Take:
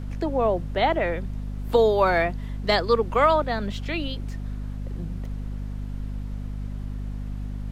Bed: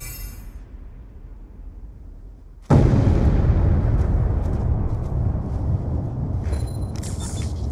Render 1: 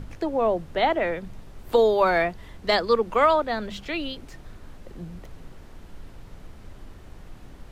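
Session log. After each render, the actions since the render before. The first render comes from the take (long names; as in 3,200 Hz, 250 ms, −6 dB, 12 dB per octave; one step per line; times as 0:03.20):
mains-hum notches 50/100/150/200/250 Hz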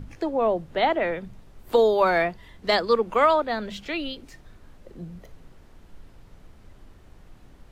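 noise reduction from a noise print 6 dB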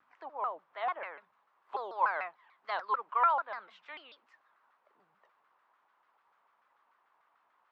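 four-pole ladder band-pass 1,200 Hz, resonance 60%
pitch modulation by a square or saw wave saw down 6.8 Hz, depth 250 cents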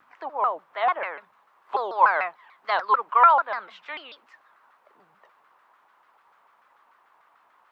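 level +11 dB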